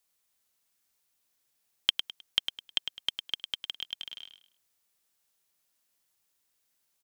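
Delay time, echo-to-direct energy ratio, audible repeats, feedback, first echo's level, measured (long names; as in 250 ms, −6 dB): 104 ms, −7.5 dB, 3, 29%, −8.0 dB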